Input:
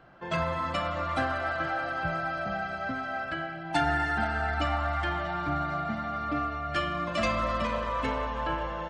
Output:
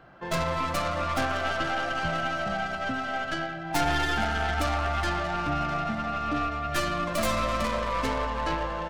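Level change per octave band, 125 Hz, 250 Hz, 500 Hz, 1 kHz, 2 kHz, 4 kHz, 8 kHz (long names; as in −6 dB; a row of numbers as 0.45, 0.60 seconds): +2.0, +2.0, +2.0, +1.5, +1.5, +5.0, +12.0 decibels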